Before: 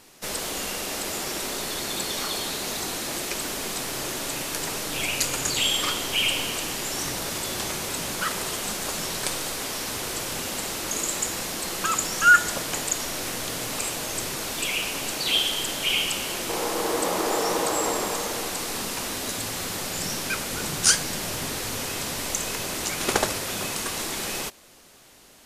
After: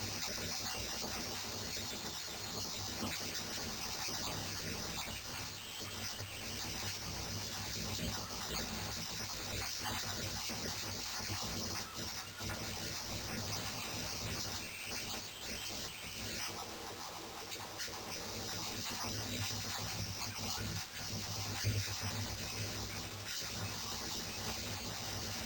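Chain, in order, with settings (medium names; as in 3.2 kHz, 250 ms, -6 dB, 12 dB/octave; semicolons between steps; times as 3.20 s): random holes in the spectrogram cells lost 31%; steep low-pass 6.2 kHz 96 dB/octave; treble shelf 4.9 kHz +11.5 dB; band-stop 3.3 kHz, Q 8.7; compressor with a negative ratio -42 dBFS, ratio -1; word length cut 8-bit, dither triangular; on a send at -4.5 dB: reverberation RT60 0.20 s, pre-delay 3 ms; on the sum: careless resampling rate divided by 4×, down none, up hold; trim -4.5 dB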